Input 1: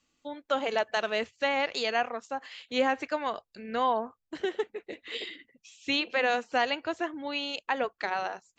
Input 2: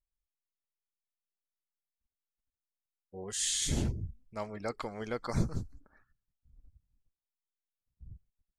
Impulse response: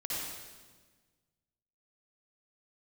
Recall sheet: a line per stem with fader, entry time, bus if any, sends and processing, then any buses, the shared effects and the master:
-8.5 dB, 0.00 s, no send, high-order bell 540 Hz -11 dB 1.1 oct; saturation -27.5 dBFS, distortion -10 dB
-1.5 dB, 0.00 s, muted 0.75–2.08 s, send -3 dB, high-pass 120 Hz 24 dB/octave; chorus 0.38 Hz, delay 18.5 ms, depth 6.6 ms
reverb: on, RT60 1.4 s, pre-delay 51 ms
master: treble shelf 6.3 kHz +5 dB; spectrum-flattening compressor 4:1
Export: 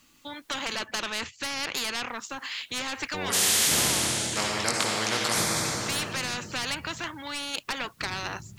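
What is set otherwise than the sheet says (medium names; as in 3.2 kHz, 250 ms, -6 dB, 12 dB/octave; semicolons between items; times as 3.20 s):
stem 2 -1.5 dB -> +8.5 dB; master: missing treble shelf 6.3 kHz +5 dB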